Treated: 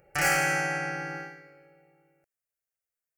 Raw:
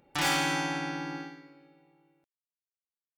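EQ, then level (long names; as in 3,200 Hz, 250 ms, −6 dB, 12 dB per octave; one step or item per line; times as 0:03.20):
phaser with its sweep stopped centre 980 Hz, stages 6
+6.5 dB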